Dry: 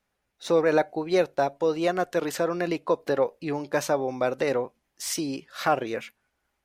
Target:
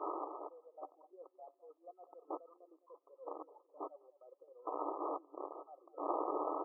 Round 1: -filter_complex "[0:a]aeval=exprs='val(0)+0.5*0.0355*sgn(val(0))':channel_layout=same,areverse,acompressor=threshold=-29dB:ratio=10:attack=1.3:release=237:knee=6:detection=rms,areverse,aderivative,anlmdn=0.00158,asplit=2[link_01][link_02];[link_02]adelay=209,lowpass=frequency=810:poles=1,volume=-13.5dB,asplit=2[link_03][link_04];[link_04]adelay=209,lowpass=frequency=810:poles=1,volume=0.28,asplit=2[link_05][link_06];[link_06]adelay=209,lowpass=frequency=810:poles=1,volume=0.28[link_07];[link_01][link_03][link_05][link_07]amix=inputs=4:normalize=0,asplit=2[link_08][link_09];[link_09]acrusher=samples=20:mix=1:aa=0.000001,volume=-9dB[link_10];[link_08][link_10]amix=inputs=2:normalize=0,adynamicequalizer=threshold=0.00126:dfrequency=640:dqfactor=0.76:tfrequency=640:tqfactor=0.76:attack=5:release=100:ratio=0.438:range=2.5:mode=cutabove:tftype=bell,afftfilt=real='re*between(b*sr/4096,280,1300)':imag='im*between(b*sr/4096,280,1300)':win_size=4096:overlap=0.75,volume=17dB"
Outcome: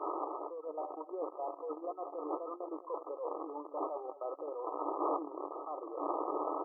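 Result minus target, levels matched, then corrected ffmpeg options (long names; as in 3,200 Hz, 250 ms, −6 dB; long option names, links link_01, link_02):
downward compressor: peak gain reduction −7.5 dB
-filter_complex "[0:a]aeval=exprs='val(0)+0.5*0.0355*sgn(val(0))':channel_layout=same,areverse,acompressor=threshold=-37.5dB:ratio=10:attack=1.3:release=237:knee=6:detection=rms,areverse,aderivative,anlmdn=0.00158,asplit=2[link_01][link_02];[link_02]adelay=209,lowpass=frequency=810:poles=1,volume=-13.5dB,asplit=2[link_03][link_04];[link_04]adelay=209,lowpass=frequency=810:poles=1,volume=0.28,asplit=2[link_05][link_06];[link_06]adelay=209,lowpass=frequency=810:poles=1,volume=0.28[link_07];[link_01][link_03][link_05][link_07]amix=inputs=4:normalize=0,asplit=2[link_08][link_09];[link_09]acrusher=samples=20:mix=1:aa=0.000001,volume=-9dB[link_10];[link_08][link_10]amix=inputs=2:normalize=0,adynamicequalizer=threshold=0.00126:dfrequency=640:dqfactor=0.76:tfrequency=640:tqfactor=0.76:attack=5:release=100:ratio=0.438:range=2.5:mode=cutabove:tftype=bell,afftfilt=real='re*between(b*sr/4096,280,1300)':imag='im*between(b*sr/4096,280,1300)':win_size=4096:overlap=0.75,volume=17dB"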